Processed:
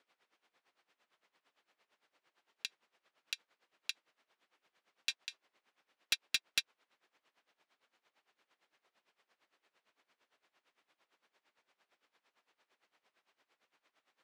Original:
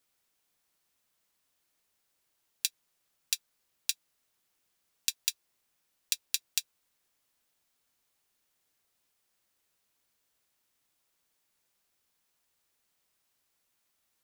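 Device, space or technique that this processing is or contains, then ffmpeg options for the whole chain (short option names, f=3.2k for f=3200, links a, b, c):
helicopter radio: -af "highpass=330,lowpass=2.7k,aeval=exprs='val(0)*pow(10,-18*(0.5-0.5*cos(2*PI*8.8*n/s))/20)':c=same,asoftclip=type=hard:threshold=-36dB,volume=13.5dB"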